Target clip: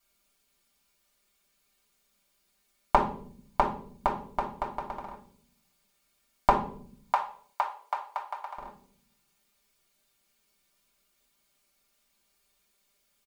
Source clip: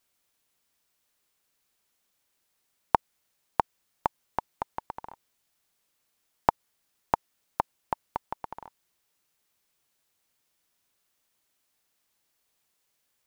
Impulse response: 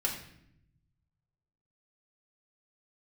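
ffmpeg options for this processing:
-filter_complex "[0:a]asettb=1/sr,asplit=3[s0][s1][s2];[s0]atrim=end=6.494[s3];[s1]atrim=start=6.49:end=8.56,asetpts=PTS-STARTPTS,afade=t=in:d=0.004:c=qsin,afade=t=out:st=2.066:d=0.004:c=qsin,highpass=f=730:w=0.5412,highpass=f=730:w=1.3066[s4];[s2]atrim=start=8.556[s5];[s3][s4]acrossfade=d=0.004:c1=hsin:c2=qsin[s6];[s6][s5]acrossfade=d=0.004:c1=qsin:c2=hsin,aecho=1:1:5:0.65[s7];[1:a]atrim=start_sample=2205,asetrate=70560,aresample=44100[s8];[s7][s8]afir=irnorm=-1:irlink=0,volume=1.19"

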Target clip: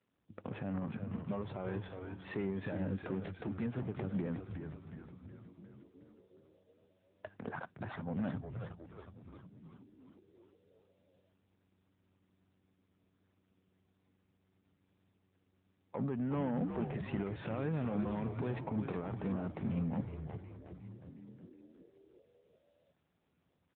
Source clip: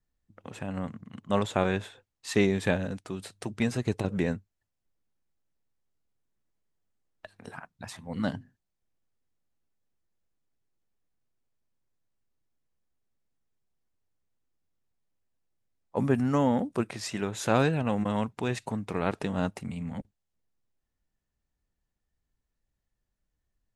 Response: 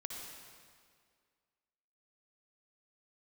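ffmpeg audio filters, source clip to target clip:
-filter_complex "[0:a]acompressor=threshold=0.0141:ratio=2.5,alimiter=level_in=2:limit=0.0631:level=0:latency=1:release=33,volume=0.501,asoftclip=type=tanh:threshold=0.02,asettb=1/sr,asplit=3[s0][s1][s2];[s0]atrim=end=15.984[s3];[s1]atrim=start=15.98:end=18.12,asetpts=PTS-STARTPTS,afade=t=in:d=0.004:c=qsin,afade=t=out:st=2.136:d=0.004:c=qsin,aeval=exprs='val(0)+0.000316*sin(2*PI*420*n/s)':c=same[s4];[s2]atrim=start=18.116[s5];[s3][s4]acrossfade=d=0.004:c1=hsin:c2=qsin[s6];[s6][s5]acrossfade=d=0.004:c1=qsin:c2=hsin,adynamicsmooth=sensitivity=6.5:basefreq=1700,asplit=9[s7][s8][s9][s10][s11][s12][s13][s14][s15];[s8]adelay=363,afreqshift=-94,volume=0.531[s16];[s9]adelay=726,afreqshift=-188,volume=0.32[s17];[s10]adelay=1089,afreqshift=-282,volume=0.191[s18];[s11]adelay=1452,afreqshift=-376,volume=0.115[s19];[s12]adelay=1815,afreqshift=-470,volume=0.0692[s20];[s13]adelay=2178,afreqshift=-564,volume=0.0412[s21];[s14]adelay=2541,afreqshift=-658,volume=0.0248[s22];[s15]adelay=2904,afreqshift=-752,volume=0.0148[s23];[s7][s16][s17][s18][s19][s20][s21][s22][s23]amix=inputs=9:normalize=0,volume=1.88" -ar 8000 -c:a libopencore_amrnb -b:a 10200

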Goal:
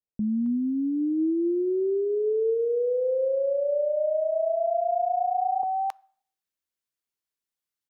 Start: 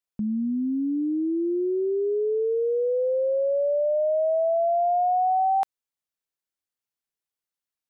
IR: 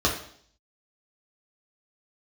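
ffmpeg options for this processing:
-filter_complex "[0:a]acrossover=split=720[s0][s1];[s1]adelay=270[s2];[s0][s2]amix=inputs=2:normalize=0,asplit=2[s3][s4];[1:a]atrim=start_sample=2205[s5];[s4][s5]afir=irnorm=-1:irlink=0,volume=0.0188[s6];[s3][s6]amix=inputs=2:normalize=0"

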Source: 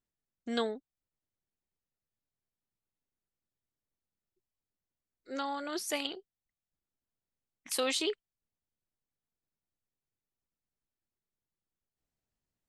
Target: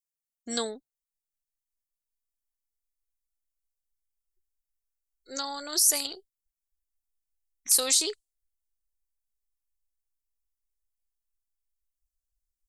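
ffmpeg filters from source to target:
-filter_complex "[0:a]asubboost=boost=5.5:cutoff=83,afftdn=nr=22:nf=-62,acrossover=split=3600[s0][s1];[s1]alimiter=level_in=3.35:limit=0.0631:level=0:latency=1:release=141,volume=0.299[s2];[s0][s2]amix=inputs=2:normalize=0,aexciter=amount=9.4:drive=7.9:freq=4500"

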